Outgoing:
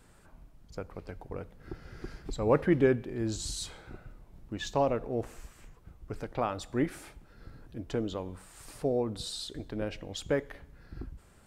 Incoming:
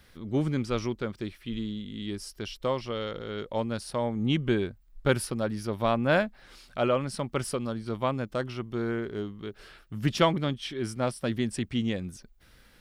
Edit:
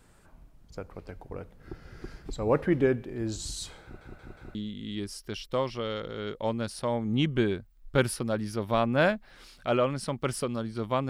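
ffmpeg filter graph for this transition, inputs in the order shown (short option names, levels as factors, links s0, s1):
-filter_complex "[0:a]apad=whole_dur=11.09,atrim=end=11.09,asplit=4[s0][s1][s2][s3];[s0]atrim=end=4.012[s4];[s1]atrim=start=3.828:end=4.012[s5];[s2]atrim=start=3.828:end=4.012[s6];[s3]atrim=start=3.828:end=4.012[s7];[1:a]atrim=start=1.658:end=8.2[s8];[s4][s5]acrossfade=d=0.004:c1=hsin:c2=hsin[s9];[s9][s6]acrossfade=d=0.004:c1=hsin:c2=hsin[s10];[s10][s7]acrossfade=d=0.004:c1=hsin:c2=hsin[s11];[s11][s8]acrossfade=d=0.004:c1=hsin:c2=hsin"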